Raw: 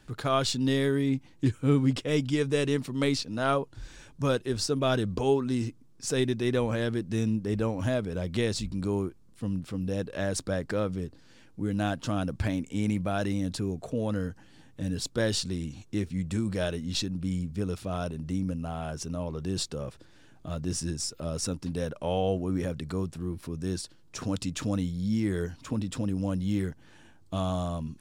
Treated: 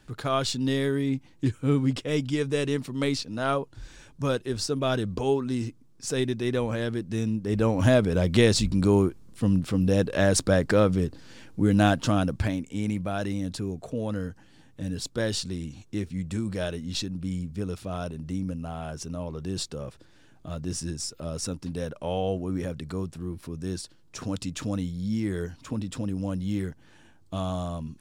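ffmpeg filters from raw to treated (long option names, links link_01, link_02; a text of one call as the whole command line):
ffmpeg -i in.wav -af "volume=8.5dB,afade=type=in:start_time=7.42:duration=0.46:silence=0.375837,afade=type=out:start_time=11.85:duration=0.76:silence=0.354813" out.wav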